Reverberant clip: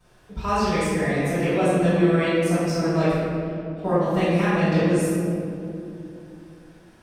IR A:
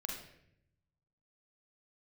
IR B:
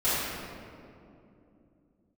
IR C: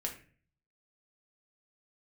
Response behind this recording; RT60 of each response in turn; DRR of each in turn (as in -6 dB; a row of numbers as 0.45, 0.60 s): B; 0.75, 2.7, 0.40 s; -0.5, -15.0, 0.0 dB